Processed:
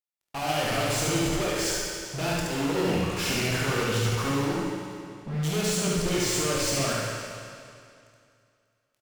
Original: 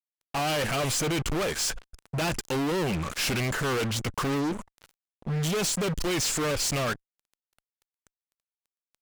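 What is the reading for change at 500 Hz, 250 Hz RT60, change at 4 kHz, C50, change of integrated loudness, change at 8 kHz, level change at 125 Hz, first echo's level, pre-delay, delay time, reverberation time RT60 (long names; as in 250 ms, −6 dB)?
+1.5 dB, 2.3 s, +1.0 dB, −3.5 dB, +1.0 dB, +1.0 dB, +2.0 dB, −2.5 dB, 16 ms, 72 ms, 2.4 s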